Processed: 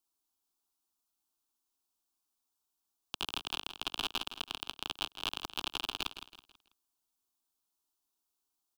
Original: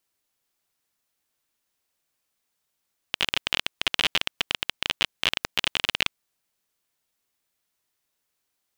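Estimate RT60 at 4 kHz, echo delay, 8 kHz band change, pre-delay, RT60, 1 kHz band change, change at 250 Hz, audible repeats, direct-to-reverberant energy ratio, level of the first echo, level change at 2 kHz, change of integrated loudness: none, 0.163 s, -10.0 dB, none, none, -6.5 dB, -7.0 dB, 3, none, -11.0 dB, -15.5 dB, -11.5 dB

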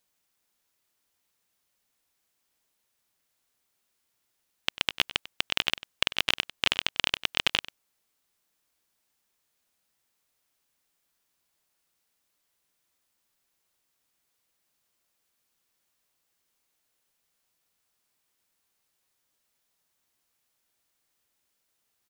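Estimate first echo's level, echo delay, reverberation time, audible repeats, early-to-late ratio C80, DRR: -17.0 dB, 96 ms, none, 1, none, none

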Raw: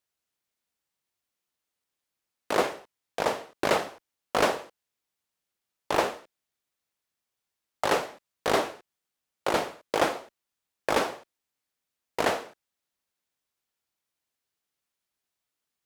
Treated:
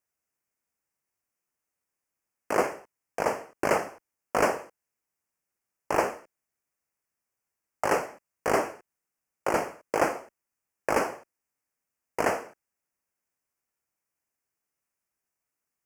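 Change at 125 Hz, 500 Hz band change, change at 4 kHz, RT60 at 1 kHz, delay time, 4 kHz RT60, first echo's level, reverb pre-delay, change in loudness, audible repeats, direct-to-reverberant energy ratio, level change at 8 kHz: 0.0 dB, 0.0 dB, -10.0 dB, none, none, none, none, none, -0.5 dB, none, none, -0.5 dB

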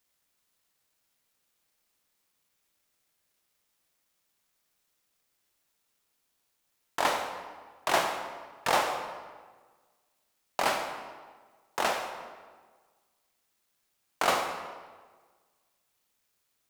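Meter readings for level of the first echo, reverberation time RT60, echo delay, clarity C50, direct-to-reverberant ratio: none, 1.5 s, none, 6.0 dB, 4.5 dB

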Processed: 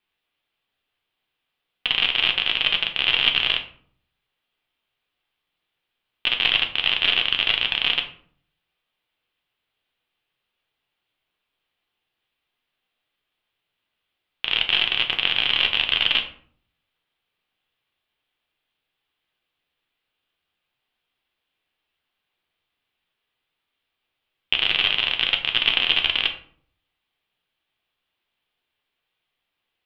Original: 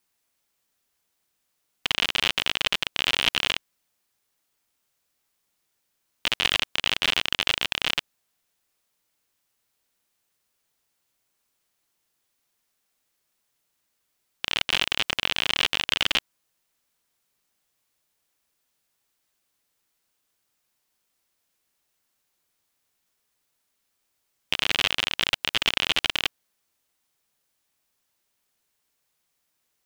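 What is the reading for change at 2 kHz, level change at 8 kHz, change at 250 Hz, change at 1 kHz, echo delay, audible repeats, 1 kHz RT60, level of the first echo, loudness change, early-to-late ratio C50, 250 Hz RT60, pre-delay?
+3.5 dB, under -20 dB, -1.5 dB, 0.0 dB, none, none, 0.50 s, none, +4.5 dB, 10.5 dB, 0.80 s, 3 ms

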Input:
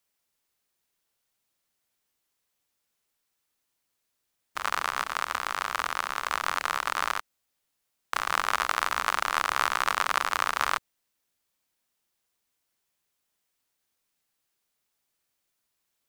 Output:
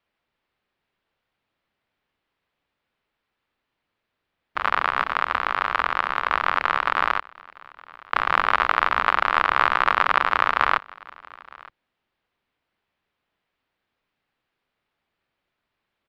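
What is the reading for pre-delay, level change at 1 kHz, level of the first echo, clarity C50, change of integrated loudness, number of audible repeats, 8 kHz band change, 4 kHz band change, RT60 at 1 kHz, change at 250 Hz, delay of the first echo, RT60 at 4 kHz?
none, +7.5 dB, -23.5 dB, none, +6.5 dB, 1, under -15 dB, +1.5 dB, none, +8.0 dB, 0.915 s, none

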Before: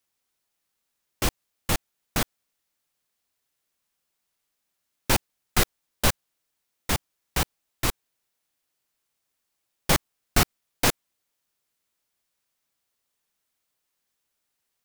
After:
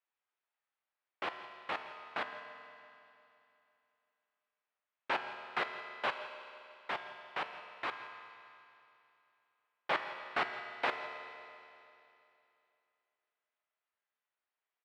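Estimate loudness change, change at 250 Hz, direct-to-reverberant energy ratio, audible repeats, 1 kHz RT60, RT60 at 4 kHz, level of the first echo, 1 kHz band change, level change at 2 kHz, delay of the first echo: -12.5 dB, -20.0 dB, 5.0 dB, 1, 2.8 s, 2.8 s, -16.5 dB, -5.5 dB, -6.0 dB, 0.167 s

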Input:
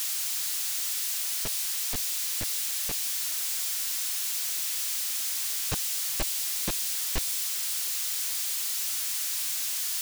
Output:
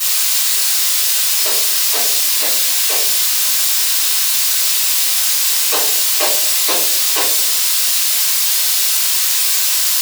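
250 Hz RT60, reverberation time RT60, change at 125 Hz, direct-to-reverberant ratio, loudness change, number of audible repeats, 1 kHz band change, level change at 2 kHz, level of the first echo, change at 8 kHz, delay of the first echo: 0.90 s, 0.65 s, under -10 dB, -12.5 dB, +15.5 dB, none, +18.5 dB, +17.0 dB, none, +15.0 dB, none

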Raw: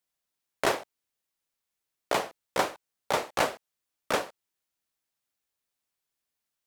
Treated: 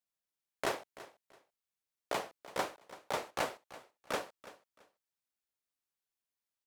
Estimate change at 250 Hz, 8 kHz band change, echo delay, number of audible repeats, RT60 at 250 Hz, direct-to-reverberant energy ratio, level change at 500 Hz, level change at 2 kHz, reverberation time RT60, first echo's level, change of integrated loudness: -8.5 dB, -8.5 dB, 0.334 s, 2, none, none, -8.5 dB, -8.5 dB, none, -17.0 dB, -8.5 dB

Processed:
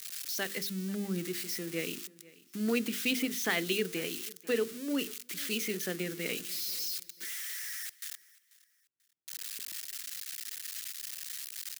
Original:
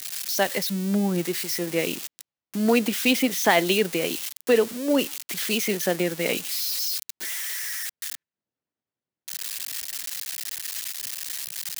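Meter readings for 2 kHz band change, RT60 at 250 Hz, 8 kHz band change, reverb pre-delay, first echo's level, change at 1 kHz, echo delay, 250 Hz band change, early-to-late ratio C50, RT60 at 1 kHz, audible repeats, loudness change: -8.5 dB, none, -8.5 dB, none, -22.0 dB, -17.0 dB, 0.489 s, -9.5 dB, none, none, 2, -9.5 dB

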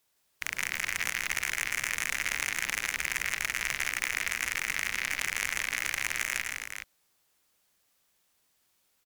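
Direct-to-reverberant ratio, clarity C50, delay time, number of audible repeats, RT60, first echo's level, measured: none, none, 0.102 s, 3, none, -15.0 dB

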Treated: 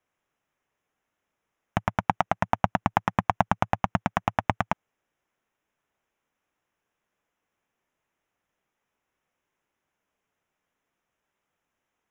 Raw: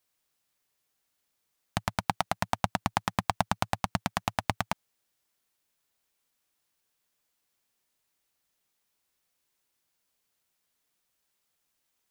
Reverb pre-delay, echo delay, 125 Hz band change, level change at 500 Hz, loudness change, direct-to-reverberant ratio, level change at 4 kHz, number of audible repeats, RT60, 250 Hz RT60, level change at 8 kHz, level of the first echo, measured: none, none, +4.5 dB, +5.5 dB, +4.5 dB, none, -5.5 dB, none, none, none, -9.0 dB, none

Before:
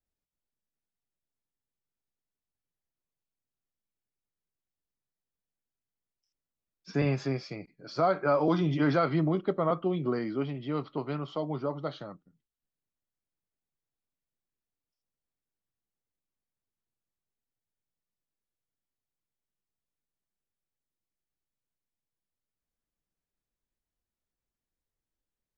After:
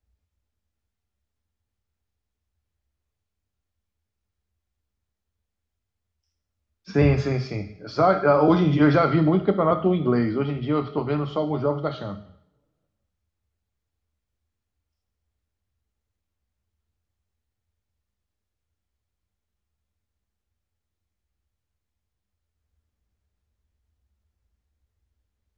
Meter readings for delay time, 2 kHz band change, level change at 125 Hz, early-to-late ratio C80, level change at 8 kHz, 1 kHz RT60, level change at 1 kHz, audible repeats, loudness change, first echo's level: none, +7.0 dB, +8.5 dB, 14.5 dB, n/a, 0.75 s, +7.5 dB, none, +8.0 dB, none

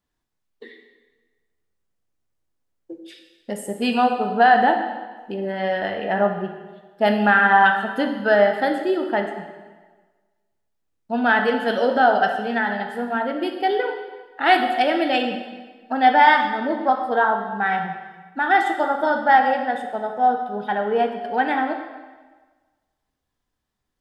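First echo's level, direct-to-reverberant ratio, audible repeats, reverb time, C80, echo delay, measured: none, 4.0 dB, none, 1.4 s, 8.0 dB, none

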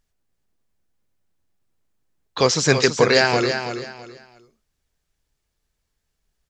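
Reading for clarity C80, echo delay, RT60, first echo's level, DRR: none, 0.329 s, none, -8.0 dB, none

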